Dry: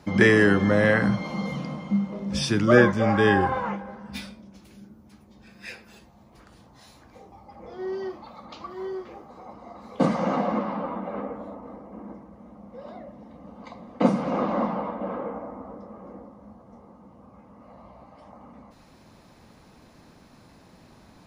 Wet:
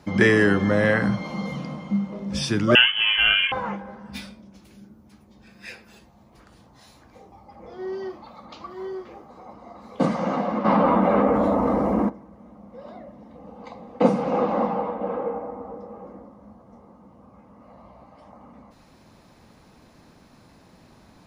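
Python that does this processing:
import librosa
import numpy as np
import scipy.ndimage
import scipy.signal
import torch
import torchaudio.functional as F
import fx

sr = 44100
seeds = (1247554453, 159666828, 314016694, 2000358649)

y = fx.freq_invert(x, sr, carrier_hz=3200, at=(2.75, 3.52))
y = fx.env_flatten(y, sr, amount_pct=70, at=(10.64, 12.08), fade=0.02)
y = fx.small_body(y, sr, hz=(480.0, 800.0, 2600.0), ring_ms=45, db=9, at=(13.35, 16.07))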